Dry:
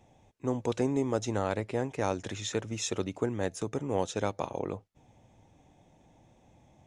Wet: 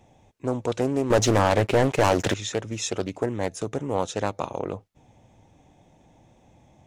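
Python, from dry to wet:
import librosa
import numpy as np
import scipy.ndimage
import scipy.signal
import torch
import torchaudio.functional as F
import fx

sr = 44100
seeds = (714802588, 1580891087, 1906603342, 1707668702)

y = fx.leveller(x, sr, passes=3, at=(1.1, 2.34))
y = fx.doppler_dist(y, sr, depth_ms=0.53)
y = y * 10.0 ** (4.5 / 20.0)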